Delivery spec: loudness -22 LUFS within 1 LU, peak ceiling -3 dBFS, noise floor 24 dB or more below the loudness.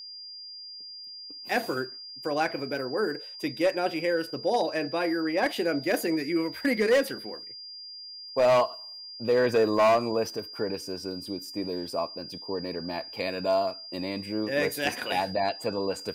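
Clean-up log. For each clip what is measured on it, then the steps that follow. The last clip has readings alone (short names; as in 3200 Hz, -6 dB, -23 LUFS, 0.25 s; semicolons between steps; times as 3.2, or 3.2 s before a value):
clipped 0.7%; flat tops at -16.5 dBFS; steady tone 4800 Hz; tone level -40 dBFS; loudness -28.0 LUFS; peak -16.5 dBFS; loudness target -22.0 LUFS
-> clip repair -16.5 dBFS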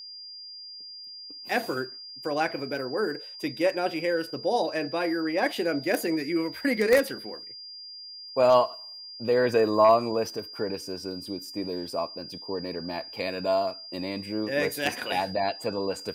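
clipped 0.0%; steady tone 4800 Hz; tone level -40 dBFS
-> notch 4800 Hz, Q 30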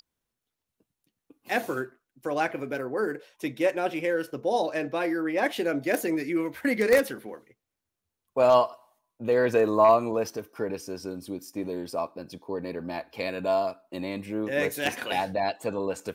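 steady tone none; loudness -27.5 LUFS; peak -7.5 dBFS; loudness target -22.0 LUFS
-> gain +5.5 dB; limiter -3 dBFS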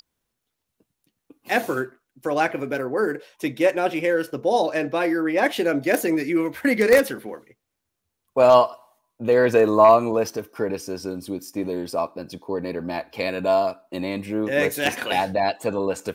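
loudness -22.0 LUFS; peak -3.0 dBFS; noise floor -81 dBFS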